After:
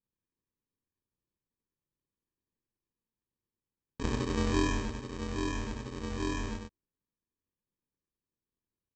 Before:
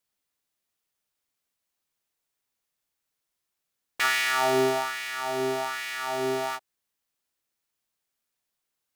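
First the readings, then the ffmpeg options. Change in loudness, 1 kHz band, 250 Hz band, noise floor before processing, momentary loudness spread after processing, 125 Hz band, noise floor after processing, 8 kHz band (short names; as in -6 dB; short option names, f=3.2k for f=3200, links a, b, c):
-7.5 dB, -12.0 dB, +2.5 dB, -83 dBFS, 10 LU, +8.5 dB, under -85 dBFS, -8.5 dB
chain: -af "aemphasis=mode=reproduction:type=50fm,aresample=16000,acrusher=samples=23:mix=1:aa=0.000001,aresample=44100,aecho=1:1:98:0.596,volume=-6.5dB"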